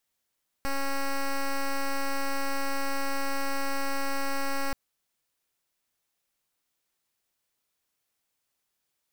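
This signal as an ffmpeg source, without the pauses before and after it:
ffmpeg -f lavfi -i "aevalsrc='0.0422*(2*lt(mod(275*t,1),0.08)-1)':duration=4.08:sample_rate=44100" out.wav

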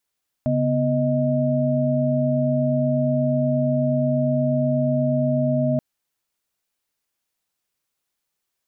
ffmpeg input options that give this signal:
ffmpeg -f lavfi -i "aevalsrc='0.0794*(sin(2*PI*138.59*t)+sin(2*PI*246.94*t)+sin(2*PI*622.25*t))':duration=5.33:sample_rate=44100" out.wav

